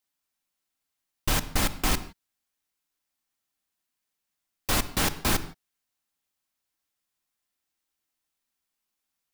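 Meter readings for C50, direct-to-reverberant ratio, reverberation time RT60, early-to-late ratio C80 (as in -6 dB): 15.5 dB, 10.5 dB, no single decay rate, 17.0 dB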